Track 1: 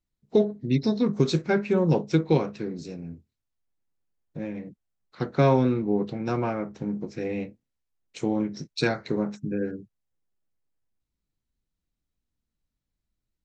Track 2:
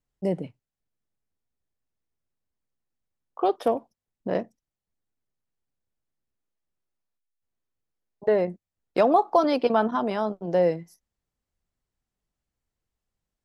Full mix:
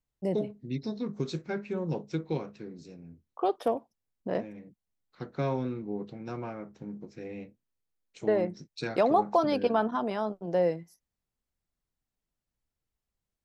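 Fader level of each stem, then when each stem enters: -10.5, -4.5 dB; 0.00, 0.00 s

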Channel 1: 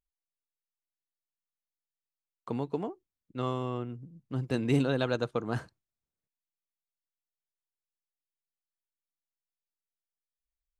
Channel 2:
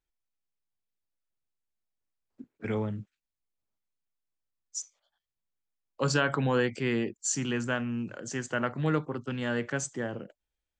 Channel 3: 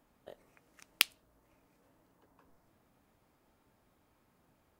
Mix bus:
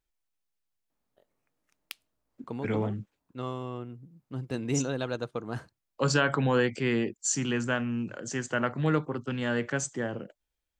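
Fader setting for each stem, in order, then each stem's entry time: -3.0, +1.5, -15.0 dB; 0.00, 0.00, 0.90 s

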